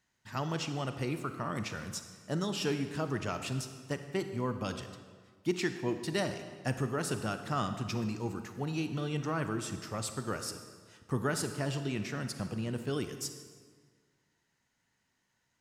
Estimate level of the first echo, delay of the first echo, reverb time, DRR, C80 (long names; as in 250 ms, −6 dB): no echo audible, no echo audible, 1.6 s, 8.0 dB, 10.0 dB